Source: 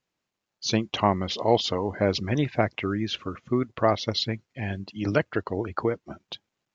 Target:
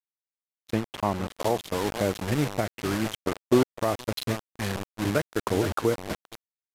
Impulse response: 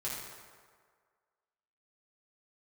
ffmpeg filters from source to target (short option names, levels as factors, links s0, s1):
-filter_complex "[0:a]adynamicsmooth=sensitivity=1:basefreq=2100,bandreject=f=4500:w=10,asplit=2[s0][s1];[s1]adelay=466,lowpass=f=4300:p=1,volume=0.178,asplit=2[s2][s3];[s3]adelay=466,lowpass=f=4300:p=1,volume=0.46,asplit=2[s4][s5];[s5]adelay=466,lowpass=f=4300:p=1,volume=0.46,asplit=2[s6][s7];[s7]adelay=466,lowpass=f=4300:p=1,volume=0.46[s8];[s0][s2][s4][s6][s8]amix=inputs=5:normalize=0,asettb=1/sr,asplit=3[s9][s10][s11];[s9]atrim=end=5.444[s12];[s10]atrim=start=5.44:end=6.22,asetpts=PTS-STARTPTS,afade=t=in:d=0.004:c=qsin,afade=t=out:st=0.776:d=0.004:c=qsin,acontrast=81[s13];[s11]atrim=start=6.216[s14];[s12][s13]acrossfade=d=0.004:c1=hsin:c2=qsin[s15];[s15][s14]acrossfade=d=0.004:c1=qsin:c2=hsin,acrusher=bits=4:mix=0:aa=0.000001,alimiter=limit=0.237:level=0:latency=1:release=332,agate=range=0.0224:threshold=0.0282:ratio=3:detection=peak,asettb=1/sr,asplit=3[s16][s17][s18];[s16]atrim=end=0.734[s19];[s17]atrim=start=0.73:end=1.37,asetpts=PTS-STARTPTS,afade=t=in:d=0.004:c=qsin,afade=t=out:st=0.636:d=0.004:c=qsin,highshelf=f=3800:g=-7.5[s20];[s18]atrim=start=1.366[s21];[s19][s20]acrossfade=d=0.004:c1=hsin:c2=qsin[s22];[s22][s21]acrossfade=d=0.004:c1=qsin:c2=hsin,aresample=32000,aresample=44100,asettb=1/sr,asplit=3[s23][s24][s25];[s23]atrim=end=3.194[s26];[s24]atrim=start=3.19:end=3.8,asetpts=PTS-STARTPTS,afade=t=in:d=0.004:c=qsin,afade=t=out:st=0.606:d=0.004:c=qsin,equalizer=f=540:w=0.86:g=9[s27];[s25]atrim=start=3.796[s28];[s26][s27]acrossfade=d=0.004:c1=hsin:c2=qsin[s29];[s29][s28]acrossfade=d=0.004:c1=qsin:c2=hsin"